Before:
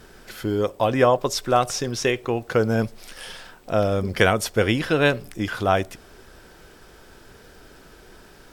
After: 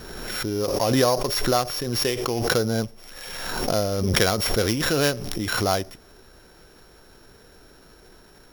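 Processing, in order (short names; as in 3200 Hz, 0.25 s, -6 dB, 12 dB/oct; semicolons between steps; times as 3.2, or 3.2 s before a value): sample sorter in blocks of 8 samples; backwards sustainer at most 31 dB/s; gain -3.5 dB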